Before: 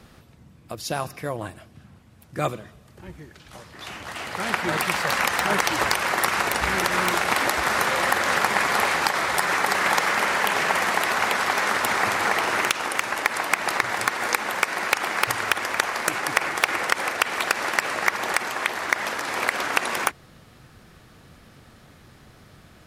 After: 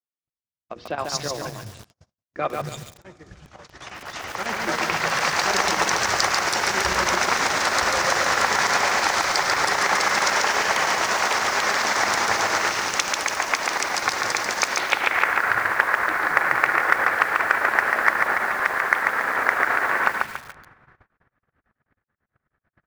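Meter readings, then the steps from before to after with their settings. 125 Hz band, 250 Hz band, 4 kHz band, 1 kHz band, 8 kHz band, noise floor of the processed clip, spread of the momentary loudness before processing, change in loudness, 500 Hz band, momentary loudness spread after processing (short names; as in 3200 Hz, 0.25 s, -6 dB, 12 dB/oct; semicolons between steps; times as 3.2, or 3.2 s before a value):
-1.5 dB, -1.5 dB, +2.0 dB, +2.0 dB, +3.0 dB, under -85 dBFS, 8 LU, +2.0 dB, +1.0 dB, 10 LU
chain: three bands offset in time mids, lows, highs 0.23/0.29 s, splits 190/3000 Hz; low-pass sweep 6000 Hz -> 1700 Hz, 14.65–15.28; notches 60/120/180/240/300/360/420/480 Hz; chopper 9.2 Hz, depth 65%, duty 75%; in parallel at -5.5 dB: hard clip -15 dBFS, distortion -9 dB; on the sum: Schroeder reverb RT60 3.8 s, combs from 31 ms, DRR 17.5 dB; gate -42 dBFS, range -54 dB; lo-fi delay 0.141 s, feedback 35%, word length 6-bit, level -3 dB; gain -3 dB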